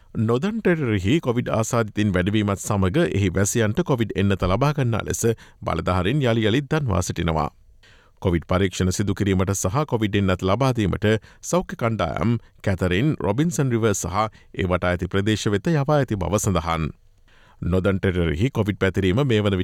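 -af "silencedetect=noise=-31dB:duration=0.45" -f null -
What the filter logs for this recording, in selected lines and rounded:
silence_start: 7.48
silence_end: 8.22 | silence_duration: 0.74
silence_start: 16.90
silence_end: 17.62 | silence_duration: 0.72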